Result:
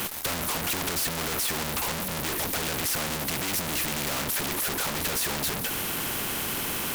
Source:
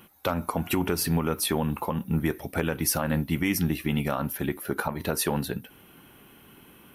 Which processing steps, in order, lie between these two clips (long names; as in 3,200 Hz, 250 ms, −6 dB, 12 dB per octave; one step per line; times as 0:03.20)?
fuzz pedal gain 52 dB, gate −58 dBFS
power curve on the samples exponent 0.7
every bin compressed towards the loudest bin 2 to 1
level −5 dB